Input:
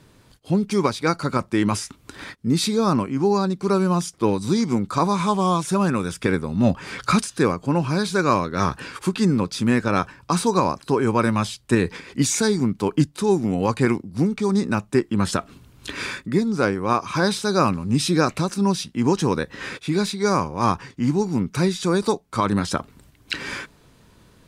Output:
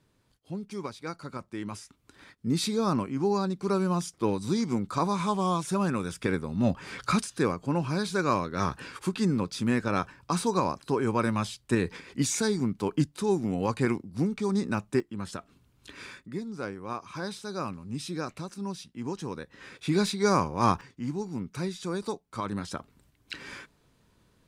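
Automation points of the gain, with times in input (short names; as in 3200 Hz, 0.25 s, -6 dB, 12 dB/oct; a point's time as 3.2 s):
-16 dB
from 2.36 s -7 dB
from 15 s -15 dB
from 19.79 s -3.5 dB
from 20.81 s -12 dB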